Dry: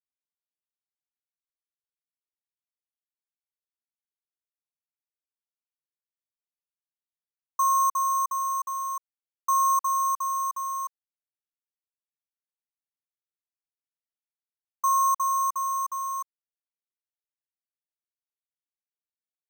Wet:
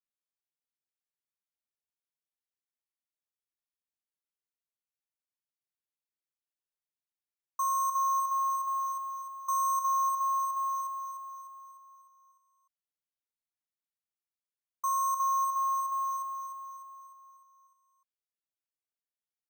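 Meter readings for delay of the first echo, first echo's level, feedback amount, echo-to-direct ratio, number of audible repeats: 0.301 s, -6.5 dB, 52%, -5.0 dB, 6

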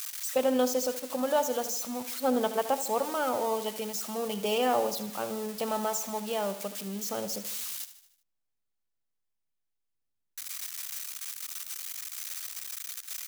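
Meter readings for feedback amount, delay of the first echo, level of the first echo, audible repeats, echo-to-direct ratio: 52%, 76 ms, -13.0 dB, 4, -11.5 dB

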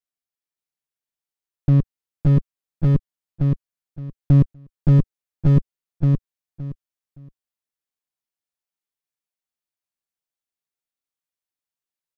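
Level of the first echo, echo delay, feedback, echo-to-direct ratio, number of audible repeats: -3.0 dB, 0.568 s, 21%, -3.0 dB, 3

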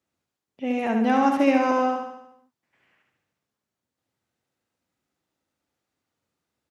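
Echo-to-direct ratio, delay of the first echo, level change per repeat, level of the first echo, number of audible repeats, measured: -3.5 dB, 72 ms, -5.0 dB, -5.0 dB, 6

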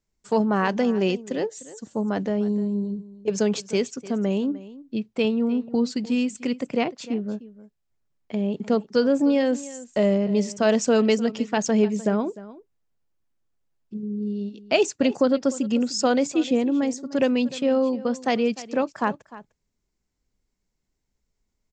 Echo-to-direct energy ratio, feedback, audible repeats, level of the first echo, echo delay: -17.5 dB, no steady repeat, 1, -17.5 dB, 0.302 s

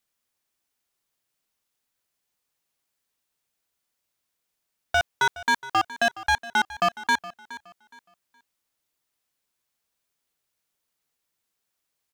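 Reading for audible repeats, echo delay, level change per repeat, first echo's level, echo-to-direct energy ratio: 2, 0.418 s, -11.5 dB, -17.0 dB, -16.5 dB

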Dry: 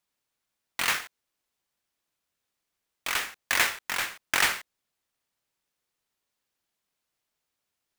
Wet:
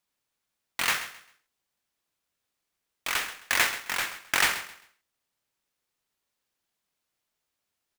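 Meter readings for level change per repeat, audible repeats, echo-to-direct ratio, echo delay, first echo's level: -11.5 dB, 2, -13.5 dB, 0.132 s, -14.0 dB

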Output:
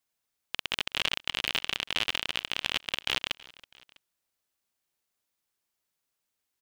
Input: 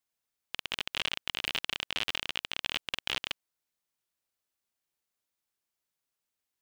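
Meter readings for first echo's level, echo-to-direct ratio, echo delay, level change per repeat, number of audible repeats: -22.0 dB, -21.0 dB, 0.326 s, -5.0 dB, 2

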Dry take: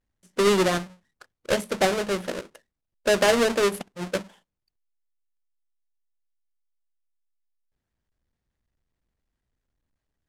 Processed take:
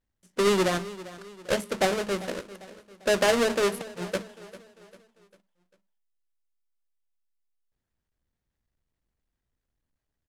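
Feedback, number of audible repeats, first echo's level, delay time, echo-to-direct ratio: 45%, 3, -17.0 dB, 0.397 s, -16.0 dB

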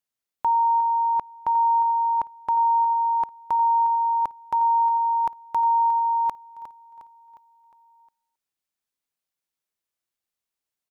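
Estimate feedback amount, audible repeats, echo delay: 51%, 4, 0.358 s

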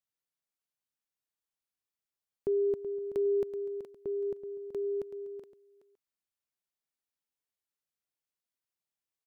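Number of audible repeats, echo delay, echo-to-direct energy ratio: 2, 0.378 s, -11.0 dB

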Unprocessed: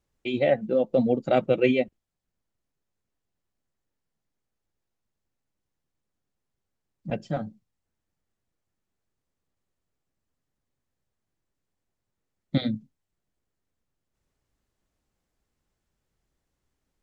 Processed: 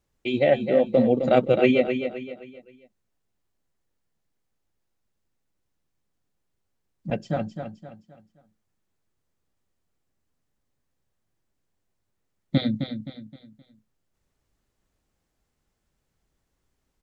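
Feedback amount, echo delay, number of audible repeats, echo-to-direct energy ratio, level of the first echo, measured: 37%, 0.261 s, 4, -7.5 dB, -8.0 dB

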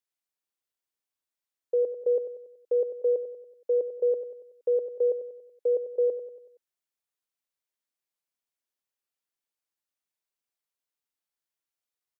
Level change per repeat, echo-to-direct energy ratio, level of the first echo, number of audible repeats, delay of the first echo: -6.0 dB, -10.0 dB, -11.0 dB, 4, 94 ms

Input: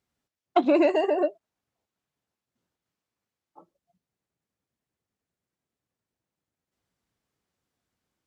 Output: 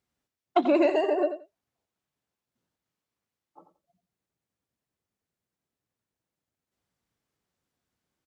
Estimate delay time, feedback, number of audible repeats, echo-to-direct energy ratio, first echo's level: 88 ms, 16%, 2, -10.5 dB, -10.5 dB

